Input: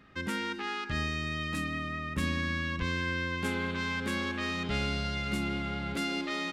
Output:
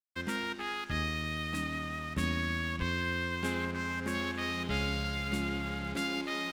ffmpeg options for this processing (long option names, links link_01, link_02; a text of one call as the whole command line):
ffmpeg -i in.wav -filter_complex "[0:a]asettb=1/sr,asplit=3[link_01][link_02][link_03];[link_01]atrim=end=3.654[link_04];[link_02]atrim=start=3.65:end=4.15,asetpts=PTS-STARTPTS,afade=type=in:duration=0.004:curve=qsin,afade=type=out:start_time=0.496:duration=0.004:curve=qsin,equalizer=frequency=3600:width_type=o:width=0.67:gain=-10.5[link_05];[link_03]atrim=start=4.146[link_06];[link_04][link_05]acrossfade=duration=0.004:curve1=hsin:curve2=qsin[link_07];[link_07][link_06]acrossfade=duration=0.004:curve1=qsin:curve2=hsin,aeval=exprs='sgn(val(0))*max(abs(val(0))-0.00447,0)':channel_layout=same" out.wav